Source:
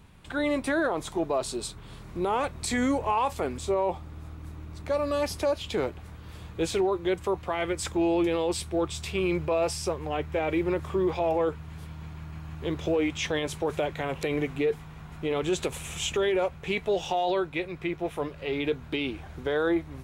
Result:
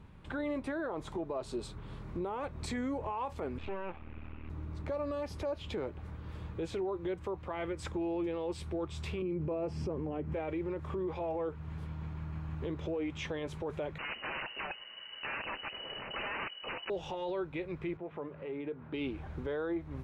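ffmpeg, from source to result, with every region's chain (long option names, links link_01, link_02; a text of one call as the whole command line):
ffmpeg -i in.wav -filter_complex "[0:a]asettb=1/sr,asplit=3[link_01][link_02][link_03];[link_01]atrim=end=3.584[link_04];[link_02]atrim=start=3.58:end=4.5,asetpts=PTS-STARTPTS,afade=type=in:duration=0.004:curve=qsin,afade=type=out:start_time=0.916:duration=0.004:curve=qsin,aeval=exprs='max(val(0),0)':channel_layout=same,lowpass=frequency=2600:width_type=q:width=5.6[link_05];[link_03]atrim=start=4.496[link_06];[link_04][link_05]acrossfade=duration=0.004:curve1=hsin:curve2=qsin[link_07];[link_07][link_06]acrossfade=duration=0.004:curve1=qsin:curve2=hsin,asettb=1/sr,asplit=3[link_08][link_09][link_10];[link_08]atrim=end=9.224[link_11];[link_09]atrim=start=9.22:end=10.34,asetpts=PTS-STARTPTS,afade=type=in:duration=0.004:curve=qsin,afade=type=out:start_time=1.116:duration=0.004:curve=qsin,bandreject=frequency=3700:width=7.5,acrossover=split=5000[link_12][link_13];[link_13]acompressor=threshold=-47dB:ratio=4:attack=1:release=60[link_14];[link_12][link_14]amix=inputs=2:normalize=0,equalizer=frequency=240:width=0.62:gain=15[link_15];[link_10]atrim=start=10.336[link_16];[link_11][link_15]acrossfade=duration=0.004:curve1=hsin:curve2=qsin[link_17];[link_17][link_16]acrossfade=duration=0.004:curve1=qsin:curve2=hsin,asettb=1/sr,asplit=3[link_18][link_19][link_20];[link_18]atrim=end=13.984[link_21];[link_19]atrim=start=13.98:end=16.9,asetpts=PTS-STARTPTS,afade=type=in:duration=0.004:curve=qsin,afade=type=out:start_time=2.916:duration=0.004:curve=qsin,asubboost=boost=9:cutoff=54,aeval=exprs='(mod(21.1*val(0)+1,2)-1)/21.1':channel_layout=same,lowpass=frequency=2600:width_type=q:width=0.5098,lowpass=frequency=2600:width_type=q:width=0.6013,lowpass=frequency=2600:width_type=q:width=0.9,lowpass=frequency=2600:width_type=q:width=2.563,afreqshift=-3000[link_22];[link_20]atrim=start=16.896[link_23];[link_21][link_22]acrossfade=duration=0.004:curve1=hsin:curve2=qsin[link_24];[link_24][link_23]acrossfade=duration=0.004:curve1=qsin:curve2=hsin,asettb=1/sr,asplit=3[link_25][link_26][link_27];[link_25]atrim=end=17.974[link_28];[link_26]atrim=start=17.97:end=18.94,asetpts=PTS-STARTPTS,afade=type=in:duration=0.004:curve=qsin,afade=type=out:start_time=0.966:duration=0.004:curve=qsin,acompressor=threshold=-39dB:ratio=2.5:attack=3.2:release=140:knee=1:detection=peak,highpass=150,lowpass=2100[link_29];[link_27]atrim=start=18.936[link_30];[link_28][link_29]acrossfade=duration=0.004:curve1=hsin:curve2=qsin[link_31];[link_31][link_30]acrossfade=duration=0.004:curve1=qsin:curve2=hsin,lowpass=frequency=1400:poles=1,bandreject=frequency=710:width=12,alimiter=level_in=4.5dB:limit=-24dB:level=0:latency=1:release=188,volume=-4.5dB" out.wav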